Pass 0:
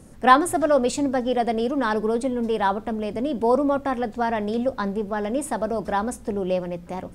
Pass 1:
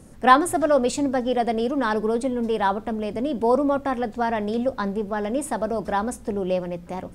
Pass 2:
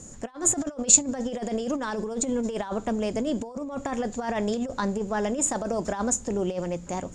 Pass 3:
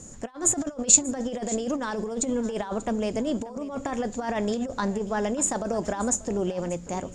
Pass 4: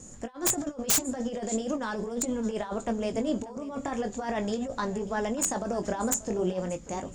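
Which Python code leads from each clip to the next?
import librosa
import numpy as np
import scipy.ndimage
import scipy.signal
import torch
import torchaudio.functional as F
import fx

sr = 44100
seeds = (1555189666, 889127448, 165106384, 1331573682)

y1 = x
y2 = fx.over_compress(y1, sr, threshold_db=-25.0, ratio=-0.5)
y2 = fx.lowpass_res(y2, sr, hz=7000.0, q=16.0)
y2 = y2 * librosa.db_to_amplitude(-3.0)
y3 = y2 + 10.0 ** (-18.0 / 20.0) * np.pad(y2, (int(587 * sr / 1000.0), 0))[:len(y2)]
y4 = fx.chorus_voices(y3, sr, voices=2, hz=0.4, base_ms=20, depth_ms=3.0, mix_pct=30)
y4 = fx.wow_flutter(y4, sr, seeds[0], rate_hz=2.1, depth_cents=27.0)
y4 = (np.mod(10.0 ** (16.5 / 20.0) * y4 + 1.0, 2.0) - 1.0) / 10.0 ** (16.5 / 20.0)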